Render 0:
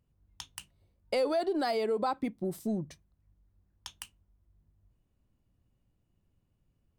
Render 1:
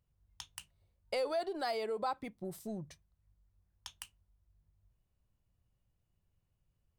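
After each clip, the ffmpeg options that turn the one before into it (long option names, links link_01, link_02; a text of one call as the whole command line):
ffmpeg -i in.wav -af "equalizer=frequency=270:width=1.3:gain=-9.5,volume=-3.5dB" out.wav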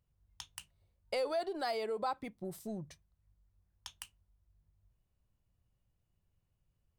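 ffmpeg -i in.wav -af anull out.wav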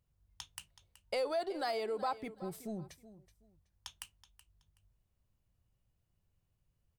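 ffmpeg -i in.wav -af "aecho=1:1:375|750:0.158|0.0365" out.wav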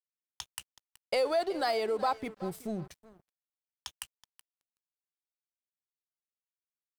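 ffmpeg -i in.wav -af "aeval=exprs='sgn(val(0))*max(abs(val(0))-0.00133,0)':channel_layout=same,volume=6.5dB" out.wav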